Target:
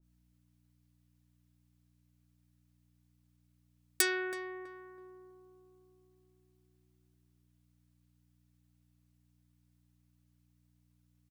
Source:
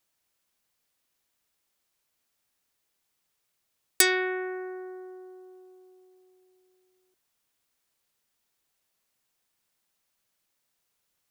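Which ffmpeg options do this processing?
-filter_complex "[0:a]aeval=exprs='val(0)+0.001*(sin(2*PI*60*n/s)+sin(2*PI*2*60*n/s)/2+sin(2*PI*3*60*n/s)/3+sin(2*PI*4*60*n/s)/4+sin(2*PI*5*60*n/s)/5)':c=same,aecho=1:1:6.1:0.34,asplit=2[s0][s1];[s1]adelay=326,lowpass=f=1400:p=1,volume=0.376,asplit=2[s2][s3];[s3]adelay=326,lowpass=f=1400:p=1,volume=0.35,asplit=2[s4][s5];[s5]adelay=326,lowpass=f=1400:p=1,volume=0.35,asplit=2[s6][s7];[s7]adelay=326,lowpass=f=1400:p=1,volume=0.35[s8];[s2][s4][s6][s8]amix=inputs=4:normalize=0[s9];[s0][s9]amix=inputs=2:normalize=0,adynamicequalizer=threshold=0.0112:dfrequency=1500:dqfactor=0.7:tfrequency=1500:tqfactor=0.7:attack=5:release=100:ratio=0.375:range=1.5:mode=cutabove:tftype=highshelf,volume=0.398"

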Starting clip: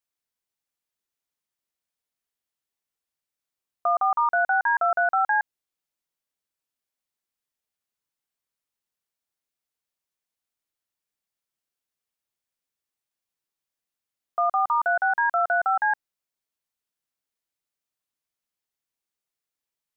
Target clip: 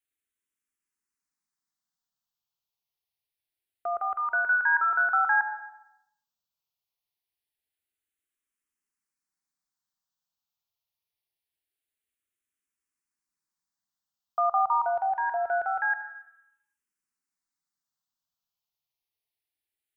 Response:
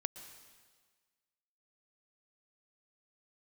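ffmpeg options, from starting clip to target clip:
-filter_complex "[0:a]equalizer=f=540:t=o:w=0.52:g=-9.5[s0];[1:a]atrim=start_sample=2205,asetrate=74970,aresample=44100[s1];[s0][s1]afir=irnorm=-1:irlink=0,asplit=2[s2][s3];[s3]afreqshift=-0.25[s4];[s2][s4]amix=inputs=2:normalize=1,volume=2.24"

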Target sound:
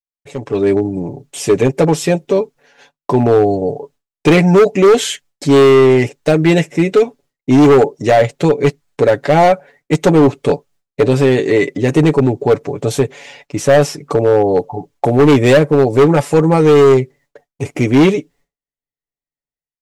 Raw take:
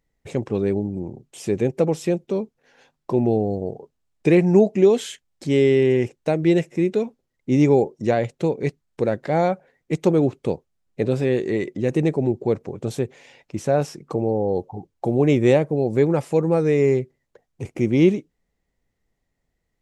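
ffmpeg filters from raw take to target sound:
-af "agate=range=0.0224:threshold=0.00316:ratio=3:detection=peak,lowshelf=f=300:g=-7.5,aecho=1:1:7:0.67,asoftclip=type=hard:threshold=0.141,dynaudnorm=f=350:g=3:m=5.62,volume=0.841"

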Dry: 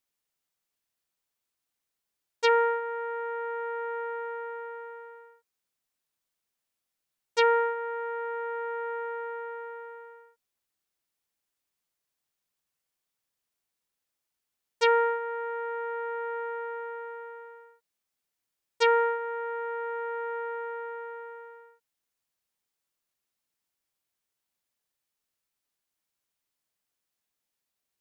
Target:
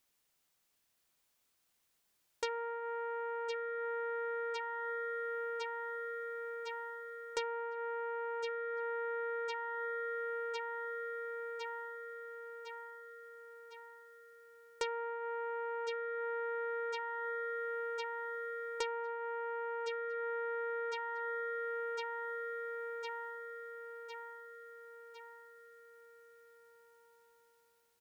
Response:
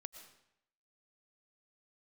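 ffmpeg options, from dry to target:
-af "aecho=1:1:1056|2112|3168|4224|5280|6336:0.398|0.207|0.108|0.056|0.0291|0.0151,acompressor=threshold=0.00794:ratio=16,volume=2.11"

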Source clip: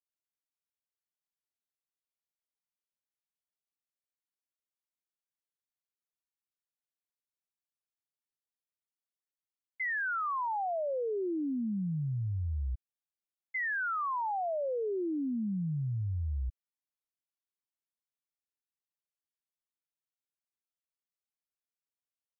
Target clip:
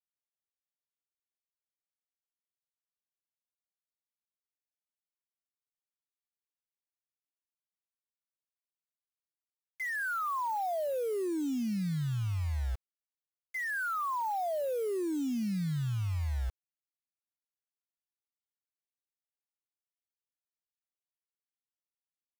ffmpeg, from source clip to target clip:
-af "aemphasis=mode=reproduction:type=75fm,acrusher=bits=7:mix=0:aa=0.000001"

